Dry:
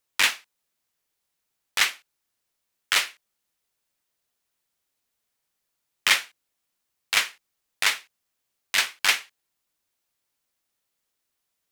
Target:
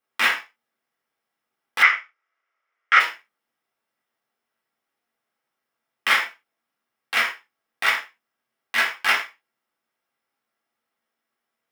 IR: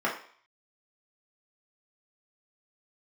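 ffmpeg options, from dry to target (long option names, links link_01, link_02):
-filter_complex "[1:a]atrim=start_sample=2205,afade=type=out:start_time=0.17:duration=0.01,atrim=end_sample=7938[link_01];[0:a][link_01]afir=irnorm=-1:irlink=0,acrusher=bits=5:mode=log:mix=0:aa=0.000001,asplit=3[link_02][link_03][link_04];[link_02]afade=type=out:start_time=1.82:duration=0.02[link_05];[link_03]highpass=frequency=370:width=0.5412,highpass=frequency=370:width=1.3066,equalizer=frequency=410:width_type=q:width=4:gain=-3,equalizer=frequency=820:width_type=q:width=4:gain=-4,equalizer=frequency=1300:width_type=q:width=4:gain=9,equalizer=frequency=2100:width_type=q:width=4:gain=9,equalizer=frequency=4200:width_type=q:width=4:gain=-8,lowpass=frequency=5900:width=0.5412,lowpass=frequency=5900:width=1.3066,afade=type=in:start_time=1.82:duration=0.02,afade=type=out:start_time=2.99:duration=0.02[link_06];[link_04]afade=type=in:start_time=2.99:duration=0.02[link_07];[link_05][link_06][link_07]amix=inputs=3:normalize=0,volume=-7dB"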